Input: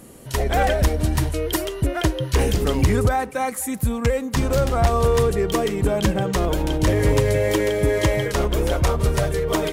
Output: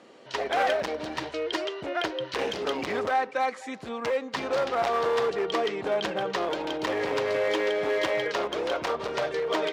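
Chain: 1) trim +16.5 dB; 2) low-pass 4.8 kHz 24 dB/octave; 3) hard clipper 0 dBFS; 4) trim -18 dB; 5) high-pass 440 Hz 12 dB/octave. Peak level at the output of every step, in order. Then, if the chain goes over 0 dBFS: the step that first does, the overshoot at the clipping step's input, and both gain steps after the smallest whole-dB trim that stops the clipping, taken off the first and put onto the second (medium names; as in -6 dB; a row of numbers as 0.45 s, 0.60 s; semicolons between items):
+6.0 dBFS, +7.0 dBFS, 0.0 dBFS, -18.0 dBFS, -13.0 dBFS; step 1, 7.0 dB; step 1 +9.5 dB, step 4 -11 dB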